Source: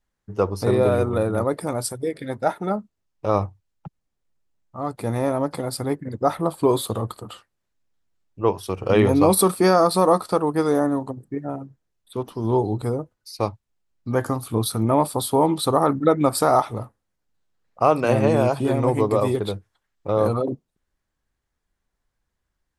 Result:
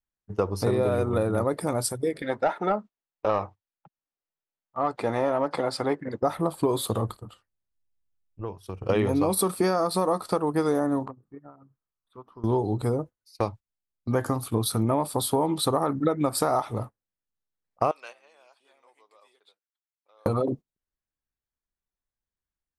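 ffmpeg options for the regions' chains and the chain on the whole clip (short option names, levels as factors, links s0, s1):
-filter_complex "[0:a]asettb=1/sr,asplit=3[s0][s1][s2];[s0]atrim=end=2.224[s3];[s1]atrim=start=2.22:end=6.23,asetpts=PTS-STARTPTS,afade=t=in:d=0.004:c=qsin,afade=t=out:st=4.006:d=0.004:c=qsin,lowpass=7500,lowshelf=f=160:g=-7.5,asplit=2[s4][s5];[s5]highpass=f=720:p=1,volume=4.47,asoftclip=type=tanh:threshold=0.447[s6];[s4][s6]amix=inputs=2:normalize=0,lowpass=f=2100:p=1,volume=0.501[s7];[s2]atrim=start=6.226[s8];[s3][s7]acrossfade=d=0.004:c1=hsin:c2=qsin[s9];[s9][s8]acrossfade=d=0.004:c1=qsin:c2=hsin,asettb=1/sr,asplit=3[s10][s11][s12];[s10]atrim=end=7.094[s13];[s11]atrim=start=7.09:end=8.89,asetpts=PTS-STARTPTS,afade=t=in:d=0.004:c=qsin,afade=t=out:st=1.796:d=0.004:c=qsin,lowshelf=f=130:g=12,acompressor=threshold=0.0251:ratio=4:attack=3.2:release=140:knee=1:detection=peak[s14];[s12]atrim=start=8.886[s15];[s13][s14]acrossfade=d=0.004:c1=hsin:c2=qsin[s16];[s16][s15]acrossfade=d=0.004:c1=qsin:c2=hsin,asettb=1/sr,asplit=3[s17][s18][s19];[s17]atrim=end=11.054[s20];[s18]atrim=start=11.05:end=12.44,asetpts=PTS-STARTPTS,afade=t=in:d=0.004:c=qsin,afade=t=out:st=1.386:d=0.004:c=qsin,lowpass=f=1600:p=1,equalizer=f=1200:t=o:w=0.68:g=14.5,acompressor=threshold=0.0224:ratio=10:attack=3.2:release=140:knee=1:detection=peak[s21];[s19]atrim=start=12.436[s22];[s20][s21]acrossfade=d=0.004:c1=hsin:c2=qsin[s23];[s23][s22]acrossfade=d=0.004:c1=qsin:c2=hsin,asettb=1/sr,asplit=3[s24][s25][s26];[s24]atrim=end=17.914[s27];[s25]atrim=start=17.91:end=20.26,asetpts=PTS-STARTPTS,afade=t=in:d=0.004:c=qsin,afade=t=out:st=2.346:d=0.004:c=qsin,highpass=470,lowpass=4000,aderivative[s28];[s26]atrim=start=20.256[s29];[s27][s28]acrossfade=d=0.004:c1=hsin:c2=qsin[s30];[s30][s29]acrossfade=d=0.004:c1=qsin:c2=hsin,agate=range=0.158:threshold=0.0178:ratio=16:detection=peak,acompressor=threshold=0.1:ratio=6"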